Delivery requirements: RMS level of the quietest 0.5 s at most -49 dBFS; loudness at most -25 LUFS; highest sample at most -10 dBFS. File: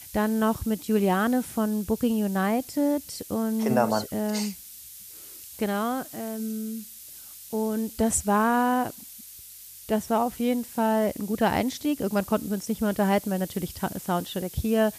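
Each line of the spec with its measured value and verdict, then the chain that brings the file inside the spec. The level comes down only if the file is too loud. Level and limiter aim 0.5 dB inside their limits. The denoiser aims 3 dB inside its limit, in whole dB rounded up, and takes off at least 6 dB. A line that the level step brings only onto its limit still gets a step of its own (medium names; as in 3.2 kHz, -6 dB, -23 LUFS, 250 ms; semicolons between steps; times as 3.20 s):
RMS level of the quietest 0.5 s -45 dBFS: fail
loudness -26.5 LUFS: pass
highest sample -9.0 dBFS: fail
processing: noise reduction 7 dB, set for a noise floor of -45 dBFS; peak limiter -10.5 dBFS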